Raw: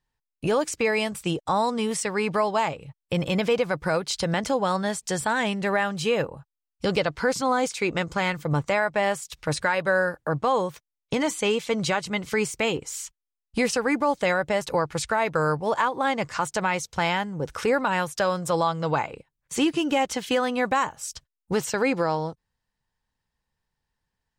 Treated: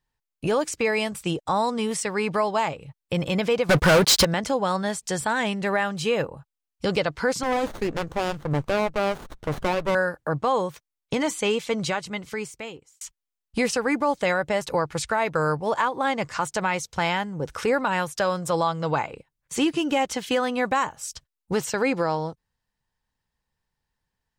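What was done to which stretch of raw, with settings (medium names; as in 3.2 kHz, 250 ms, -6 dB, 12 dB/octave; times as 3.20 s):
3.69–4.25 s: waveshaping leveller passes 5
7.43–9.95 s: sliding maximum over 17 samples
11.66–13.01 s: fade out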